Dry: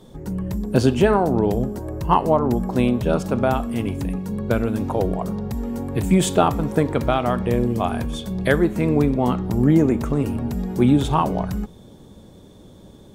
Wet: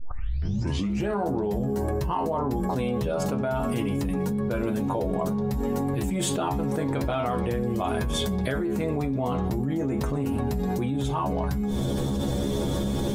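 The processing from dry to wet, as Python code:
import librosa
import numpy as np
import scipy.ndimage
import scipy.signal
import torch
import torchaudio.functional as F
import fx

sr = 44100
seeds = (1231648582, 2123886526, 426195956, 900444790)

y = fx.tape_start_head(x, sr, length_s=1.11)
y = fx.stiff_resonator(y, sr, f0_hz=67.0, decay_s=0.26, stiffness=0.002)
y = fx.env_flatten(y, sr, amount_pct=100)
y = F.gain(torch.from_numpy(y), -8.5).numpy()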